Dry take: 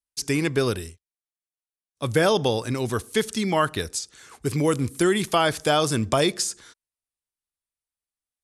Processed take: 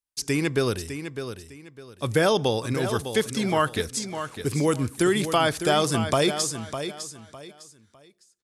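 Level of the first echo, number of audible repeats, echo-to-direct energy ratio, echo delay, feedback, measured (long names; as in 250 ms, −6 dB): −9.5 dB, 3, −9.0 dB, 605 ms, 27%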